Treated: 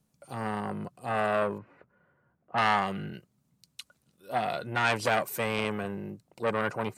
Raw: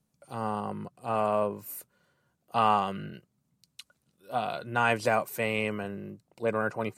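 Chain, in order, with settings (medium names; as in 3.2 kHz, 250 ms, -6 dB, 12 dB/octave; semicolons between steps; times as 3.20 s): 1.58–2.58 s: low-pass 2 kHz 24 dB/octave; transformer saturation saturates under 2.1 kHz; trim +3 dB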